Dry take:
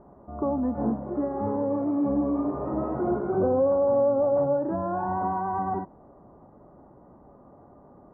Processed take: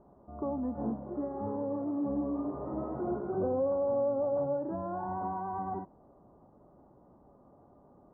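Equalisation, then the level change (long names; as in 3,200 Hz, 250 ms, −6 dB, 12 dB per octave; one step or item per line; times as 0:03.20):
low-pass filter 1,500 Hz 12 dB per octave
−7.5 dB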